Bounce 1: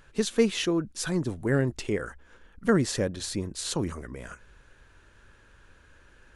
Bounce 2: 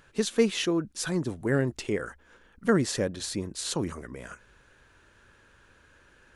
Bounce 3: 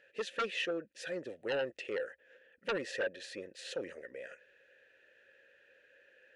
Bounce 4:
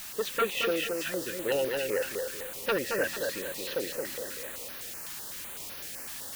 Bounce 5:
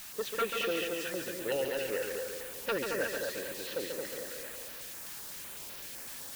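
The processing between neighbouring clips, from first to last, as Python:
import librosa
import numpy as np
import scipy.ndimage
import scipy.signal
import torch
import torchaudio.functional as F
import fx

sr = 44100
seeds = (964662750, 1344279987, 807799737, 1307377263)

y1 = fx.low_shelf(x, sr, hz=61.0, db=-11.5)
y2 = fx.vowel_filter(y1, sr, vowel='e')
y2 = fx.fold_sine(y2, sr, drive_db=10, ceiling_db=-20.5)
y2 = fx.tilt_shelf(y2, sr, db=-3.5, hz=830.0)
y2 = y2 * 10.0 ** (-8.0 / 20.0)
y3 = fx.quant_dither(y2, sr, seeds[0], bits=8, dither='triangular')
y3 = fx.echo_feedback(y3, sr, ms=223, feedback_pct=39, wet_db=-4.0)
y3 = fx.filter_held_notch(y3, sr, hz=7.9, low_hz=480.0, high_hz=7800.0)
y3 = y3 * 10.0 ** (6.5 / 20.0)
y4 = y3 + 10.0 ** (-6.0 / 20.0) * np.pad(y3, (int(139 * sr / 1000.0), 0))[:len(y3)]
y4 = y4 * 10.0 ** (-4.5 / 20.0)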